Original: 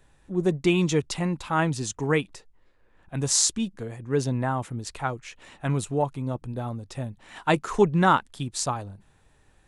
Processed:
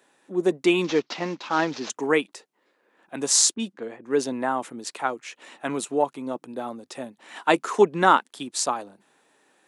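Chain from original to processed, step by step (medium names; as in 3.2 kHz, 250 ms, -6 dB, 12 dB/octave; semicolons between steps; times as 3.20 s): 0.84–1.90 s: CVSD coder 32 kbps; high-pass 250 Hz 24 dB/octave; 3.54–4.04 s: level-controlled noise filter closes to 340 Hz, open at -29.5 dBFS; trim +3 dB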